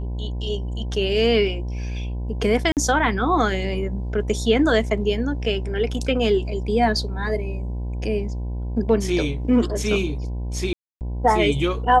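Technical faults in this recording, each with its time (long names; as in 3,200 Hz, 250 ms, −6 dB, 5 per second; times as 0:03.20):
mains buzz 60 Hz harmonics 17 −27 dBFS
0:02.72–0:02.77: drop-out 48 ms
0:10.73–0:11.01: drop-out 279 ms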